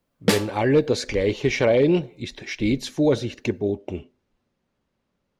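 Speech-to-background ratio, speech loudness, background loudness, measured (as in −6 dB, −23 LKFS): 2.0 dB, −22.5 LKFS, −24.5 LKFS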